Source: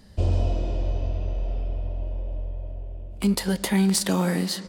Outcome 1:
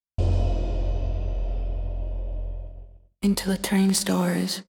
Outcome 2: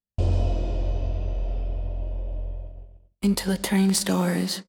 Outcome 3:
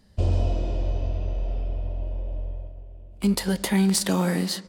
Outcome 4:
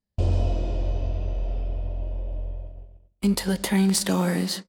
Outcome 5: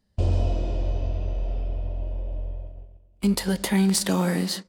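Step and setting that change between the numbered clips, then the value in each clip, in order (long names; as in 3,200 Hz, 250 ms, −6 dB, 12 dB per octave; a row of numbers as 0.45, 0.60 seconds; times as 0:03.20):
noise gate, range: −59, −47, −7, −35, −20 decibels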